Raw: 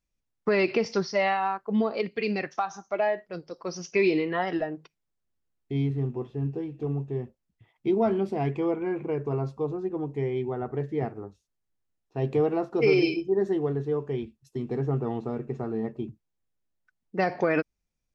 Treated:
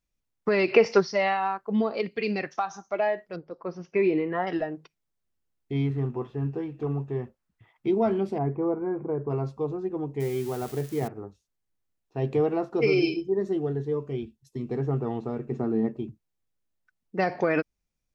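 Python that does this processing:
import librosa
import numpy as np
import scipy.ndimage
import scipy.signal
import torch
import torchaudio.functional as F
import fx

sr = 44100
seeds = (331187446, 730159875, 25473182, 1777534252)

y = fx.spec_box(x, sr, start_s=0.72, length_s=0.28, low_hz=370.0, high_hz=3000.0, gain_db=8)
y = fx.lowpass(y, sr, hz=1800.0, slope=12, at=(3.36, 4.47))
y = fx.peak_eq(y, sr, hz=1300.0, db=8.5, octaves=1.4, at=(5.72, 7.87))
y = fx.lowpass(y, sr, hz=1400.0, slope=24, at=(8.38, 9.3))
y = fx.crossing_spikes(y, sr, level_db=-30.5, at=(10.2, 11.08))
y = fx.notch_cascade(y, sr, direction='rising', hz=1.7, at=(12.86, 14.71))
y = fx.peak_eq(y, sr, hz=270.0, db=8.0, octaves=1.0, at=(15.51, 15.97))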